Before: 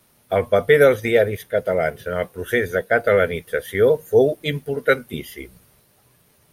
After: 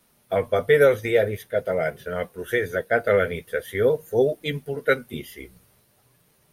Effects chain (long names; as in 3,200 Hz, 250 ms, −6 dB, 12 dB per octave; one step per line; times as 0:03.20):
flanger 0.45 Hz, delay 3.9 ms, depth 7.1 ms, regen −46%